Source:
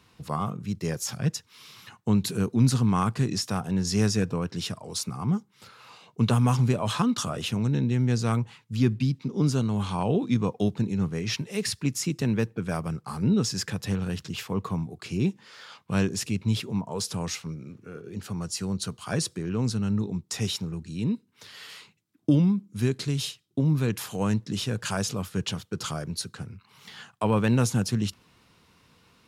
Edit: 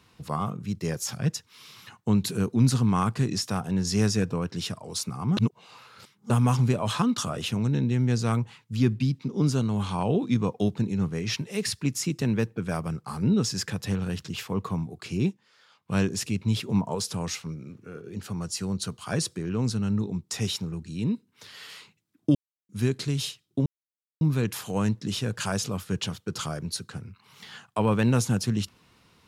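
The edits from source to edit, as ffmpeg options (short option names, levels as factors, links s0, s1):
-filter_complex "[0:a]asplit=10[s0][s1][s2][s3][s4][s5][s6][s7][s8][s9];[s0]atrim=end=5.372[s10];[s1]atrim=start=5.368:end=6.302,asetpts=PTS-STARTPTS,areverse[s11];[s2]atrim=start=6.298:end=15.38,asetpts=PTS-STARTPTS,afade=t=out:st=8.962:d=0.12:silence=0.223872[s12];[s3]atrim=start=15.38:end=15.81,asetpts=PTS-STARTPTS,volume=0.224[s13];[s4]atrim=start=15.81:end=16.692,asetpts=PTS-STARTPTS,afade=t=in:d=0.12:silence=0.223872[s14];[s5]atrim=start=16.688:end=16.952,asetpts=PTS-STARTPTS,volume=1.68[s15];[s6]atrim=start=16.948:end=22.35,asetpts=PTS-STARTPTS,afade=t=out:st=5.398:d=0.004:c=hsin[s16];[s7]atrim=start=22.35:end=22.69,asetpts=PTS-STARTPTS,volume=0[s17];[s8]atrim=start=22.69:end=23.66,asetpts=PTS-STARTPTS,afade=t=in:d=0.004:c=hsin,afade=t=out:st=0.966:d=0.004:c=hsin,apad=pad_dur=0.55[s18];[s9]atrim=start=23.66,asetpts=PTS-STARTPTS,afade=t=in:d=0.004:c=hsin[s19];[s10][s11]acrossfade=d=0.004:c1=hsin:c2=hsin[s20];[s12][s13][s14]concat=n=3:v=0:a=1[s21];[s20][s21]acrossfade=d=0.004:c1=hsin:c2=hsin[s22];[s22][s15]acrossfade=d=0.004:c1=hsin:c2=hsin[s23];[s16][s17][s18][s19]concat=n=4:v=0:a=1[s24];[s23][s24]acrossfade=d=0.004:c1=hsin:c2=hsin"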